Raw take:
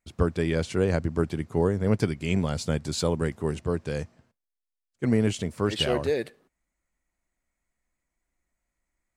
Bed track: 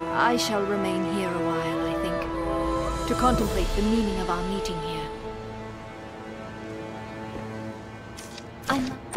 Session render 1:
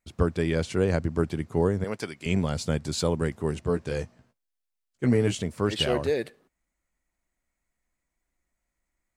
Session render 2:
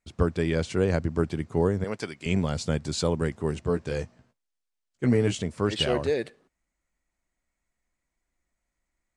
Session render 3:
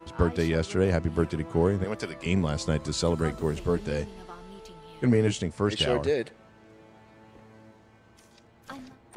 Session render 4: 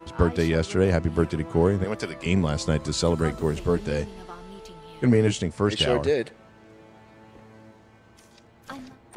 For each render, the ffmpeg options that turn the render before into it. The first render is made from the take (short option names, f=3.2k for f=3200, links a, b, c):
-filter_complex "[0:a]asettb=1/sr,asplit=3[a][b][c];[a]atrim=end=1.844[d];[b]atrim=start=1.84:end=2.26,asetpts=PTS-STARTPTS,afade=t=in:d=0.004:c=qsin,afade=t=out:st=0.416:d=0.004:c=qsin,highpass=f=810:p=1[e];[c]atrim=start=2.256[f];[d][e]acrossfade=d=0.004:c1=hsin:c2=qsin[g];[g][f]acrossfade=d=0.004:c1=qsin:c2=hsin,asettb=1/sr,asplit=3[h][i][j];[h]atrim=end=3.654[k];[i]atrim=start=3.65:end=5.4,asetpts=PTS-STARTPTS,afade=t=in:d=0.004:c=qsin,afade=t=out:st=1.746:d=0.004:c=qsin,asplit=2[l][m];[m]adelay=16,volume=-7dB[n];[l][n]amix=inputs=2:normalize=0,atrim=end_sample=77175[o];[j]atrim=start=5.396[p];[k][o]acrossfade=d=0.004:c1=hsin:c2=qsin[q];[q][p]acrossfade=d=0.004:c1=qsin:c2=hsin"
-af "lowpass=f=9.4k:w=0.5412,lowpass=f=9.4k:w=1.3066"
-filter_complex "[1:a]volume=-17dB[a];[0:a][a]amix=inputs=2:normalize=0"
-af "volume=3dB"